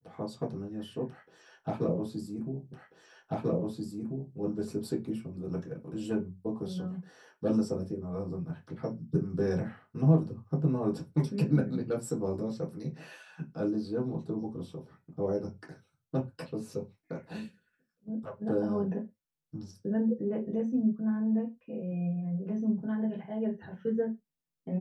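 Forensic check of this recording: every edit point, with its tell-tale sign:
2.73 repeat of the last 1.64 s

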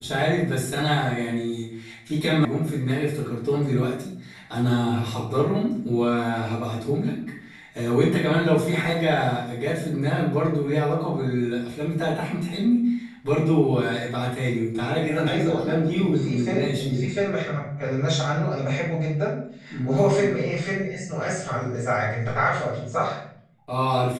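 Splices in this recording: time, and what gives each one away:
2.45 sound cut off

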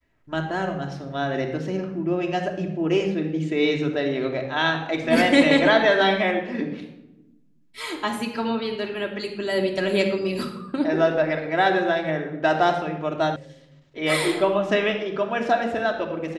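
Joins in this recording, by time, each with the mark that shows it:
13.36 sound cut off

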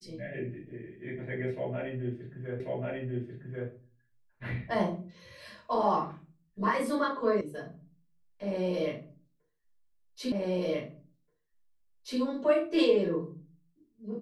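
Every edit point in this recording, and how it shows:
2.6 repeat of the last 1.09 s
7.41 sound cut off
10.32 repeat of the last 1.88 s

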